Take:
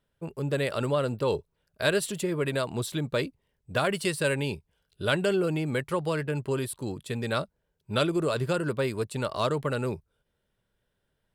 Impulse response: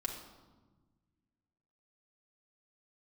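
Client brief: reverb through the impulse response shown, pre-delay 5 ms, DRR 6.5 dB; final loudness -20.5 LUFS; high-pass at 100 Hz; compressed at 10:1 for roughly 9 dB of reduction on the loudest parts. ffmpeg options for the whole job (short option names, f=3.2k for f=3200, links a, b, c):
-filter_complex "[0:a]highpass=100,acompressor=threshold=-30dB:ratio=10,asplit=2[a][b];[1:a]atrim=start_sample=2205,adelay=5[c];[b][c]afir=irnorm=-1:irlink=0,volume=-7.5dB[d];[a][d]amix=inputs=2:normalize=0,volume=14dB"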